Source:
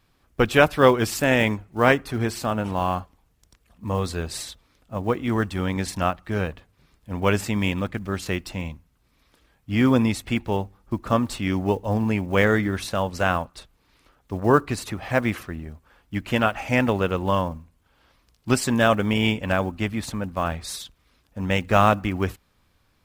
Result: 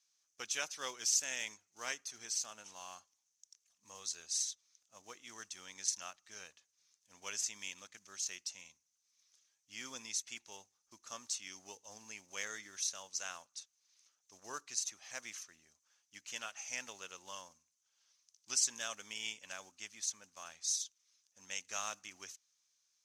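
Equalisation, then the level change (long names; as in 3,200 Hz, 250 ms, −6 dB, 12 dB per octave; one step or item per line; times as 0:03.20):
resonant band-pass 6,200 Hz, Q 8.3
+8.5 dB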